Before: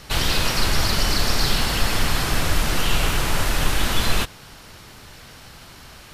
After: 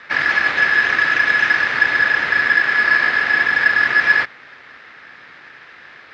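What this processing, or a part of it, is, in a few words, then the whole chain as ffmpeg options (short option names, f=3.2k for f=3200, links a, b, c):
ring modulator pedal into a guitar cabinet: -af "aeval=exprs='val(0)*sgn(sin(2*PI*1700*n/s))':c=same,highpass=96,equalizer=f=98:t=q:w=4:g=-4,equalizer=f=190:t=q:w=4:g=-6,equalizer=f=1.3k:t=q:w=4:g=7,equalizer=f=2.1k:t=q:w=4:g=8,equalizer=f=3.1k:t=q:w=4:g=-4,lowpass=f=3.7k:w=0.5412,lowpass=f=3.7k:w=1.3066"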